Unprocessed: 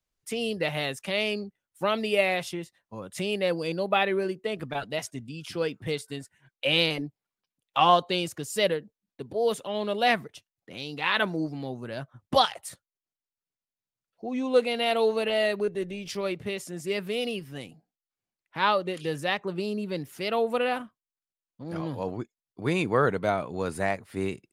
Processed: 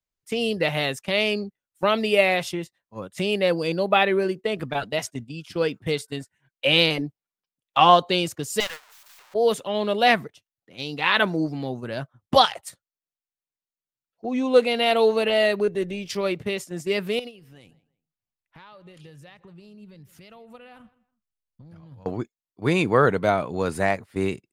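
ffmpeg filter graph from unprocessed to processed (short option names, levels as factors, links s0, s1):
-filter_complex "[0:a]asettb=1/sr,asplit=3[s0][s1][s2];[s0]atrim=end=8.604[s3];[s1]atrim=start=8.6:end=9.34,asetpts=PTS-STARTPTS,afade=t=in:d=0.004:c=qsin,afade=t=out:st=0.736:d=0.004:c=qsin,aeval=exprs='val(0)+0.5*0.0355*sgn(val(0))':c=same,highpass=f=870:w=0.5412,highpass=f=870:w=1.3066,aeval=exprs='(tanh(14.1*val(0)+0.75)-tanh(0.75))/14.1':c=same[s4];[s2]atrim=start=9.336[s5];[s3][s4]acrossfade=d=0.004:c1=hsin:c2=qsin[s6];[s6][s5]acrossfade=d=0.004:c1=qsin:c2=hsin,asettb=1/sr,asplit=3[s7][s8][s9];[s7]atrim=end=17.194[s10];[s8]atrim=start=17.19:end=22.06,asetpts=PTS-STARTPTS,afade=t=in:d=0.004:c=qsin,afade=t=out:st=4.866:d=0.004:c=qsin,asubboost=boost=9.5:cutoff=120,acompressor=threshold=0.0141:ratio=16:attack=3.2:release=140:knee=1:detection=peak,asplit=2[s11][s12];[s12]adelay=162,lowpass=f=3100:p=1,volume=0.112,asplit=2[s13][s14];[s14]adelay=162,lowpass=f=3100:p=1,volume=0.27[s15];[s11][s13][s15]amix=inputs=3:normalize=0,atrim=end_sample=214767[s16];[s9]atrim=start=22.056[s17];[s10][s16]acrossfade=d=0.004:c1=hsin:c2=qsin[s18];[s18][s17]acrossfade=d=0.004:c1=qsin:c2=hsin,agate=range=0.282:threshold=0.0126:ratio=16:detection=peak,equalizer=f=10000:t=o:w=0.28:g=-3.5,volume=1.78"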